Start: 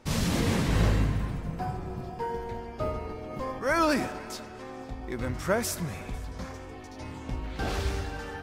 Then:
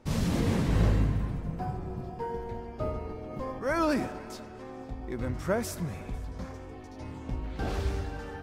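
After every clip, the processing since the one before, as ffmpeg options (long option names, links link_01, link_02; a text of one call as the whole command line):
ffmpeg -i in.wav -af "tiltshelf=frequency=970:gain=3.5,volume=-3.5dB" out.wav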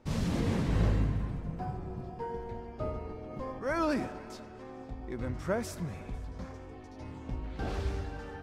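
ffmpeg -i in.wav -af "highshelf=frequency=12000:gain=-11.5,volume=-3dB" out.wav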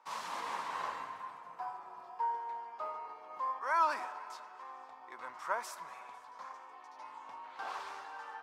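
ffmpeg -i in.wav -af "highpass=frequency=1000:width_type=q:width=4.9,volume=-3.5dB" out.wav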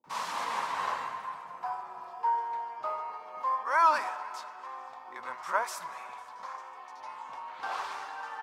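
ffmpeg -i in.wav -filter_complex "[0:a]acrossover=split=340[link_01][link_02];[link_02]adelay=40[link_03];[link_01][link_03]amix=inputs=2:normalize=0,volume=6.5dB" out.wav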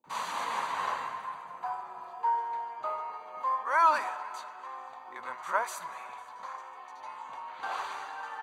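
ffmpeg -i in.wav -af "asuperstop=centerf=5300:order=12:qfactor=7" out.wav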